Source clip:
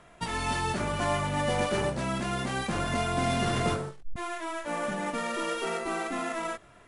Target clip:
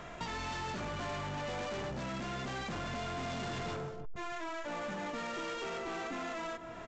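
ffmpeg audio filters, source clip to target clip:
ffmpeg -i in.wav -filter_complex "[0:a]asplit=2[link_01][link_02];[link_02]adelay=166,lowpass=frequency=1200:poles=1,volume=-15.5dB,asplit=2[link_03][link_04];[link_04]adelay=166,lowpass=frequency=1200:poles=1,volume=0.49,asplit=2[link_05][link_06];[link_06]adelay=166,lowpass=frequency=1200:poles=1,volume=0.49,asplit=2[link_07][link_08];[link_08]adelay=166,lowpass=frequency=1200:poles=1,volume=0.49[link_09];[link_01][link_03][link_05][link_07][link_09]amix=inputs=5:normalize=0,aresample=16000,asoftclip=type=tanh:threshold=-33dB,aresample=44100,acompressor=threshold=-49dB:ratio=4,volume=8.5dB" out.wav

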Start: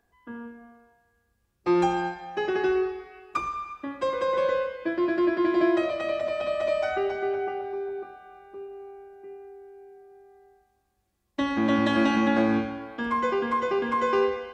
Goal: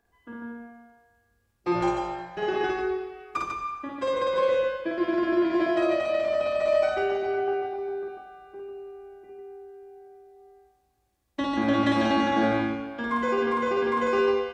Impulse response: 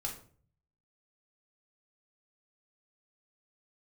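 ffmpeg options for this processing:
-filter_complex "[0:a]asettb=1/sr,asplit=3[link_01][link_02][link_03];[link_01]atrim=end=1.754[link_04];[link_02]atrim=start=1.75:end=2.42,asetpts=PTS-STARTPTS,afade=type=in:duration=0.004:curve=qsin,afade=type=out:start_time=0.666:duration=0.004:curve=qsin,tremolo=f=230:d=0.71[link_05];[link_03]atrim=start=2.416[link_06];[link_04][link_05]acrossfade=duration=0.004:curve1=hsin:curve2=qsin[link_07];[link_07][link_06]acrossfade=duration=0.004:curve1=qsin:curve2=hsin,aecho=1:1:52.48|145.8:0.891|0.631,volume=-2dB"

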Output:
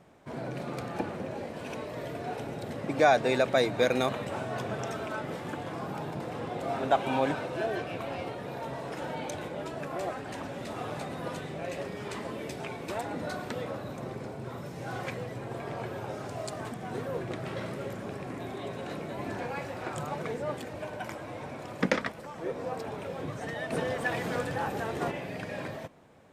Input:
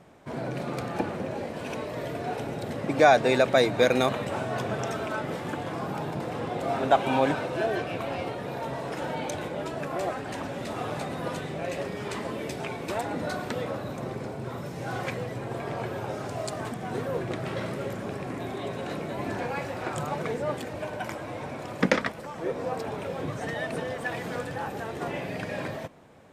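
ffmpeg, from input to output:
ffmpeg -i in.wav -filter_complex "[0:a]asplit=3[link_01][link_02][link_03];[link_01]afade=type=out:start_time=23.7:duration=0.02[link_04];[link_02]acontrast=32,afade=type=in:start_time=23.7:duration=0.02,afade=type=out:start_time=25.1:duration=0.02[link_05];[link_03]afade=type=in:start_time=25.1:duration=0.02[link_06];[link_04][link_05][link_06]amix=inputs=3:normalize=0,volume=-4dB" out.wav

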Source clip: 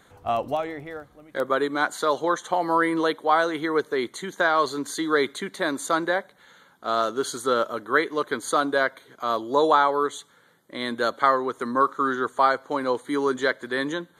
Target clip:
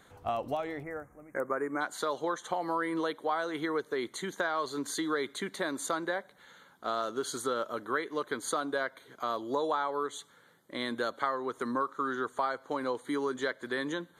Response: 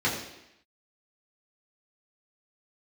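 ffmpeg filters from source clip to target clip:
-filter_complex "[0:a]acompressor=threshold=-27dB:ratio=3,asplit=3[link_01][link_02][link_03];[link_01]afade=type=out:start_time=0.82:duration=0.02[link_04];[link_02]asuperstop=centerf=3800:order=8:qfactor=1,afade=type=in:start_time=0.82:duration=0.02,afade=type=out:start_time=1.8:duration=0.02[link_05];[link_03]afade=type=in:start_time=1.8:duration=0.02[link_06];[link_04][link_05][link_06]amix=inputs=3:normalize=0,volume=-3dB"

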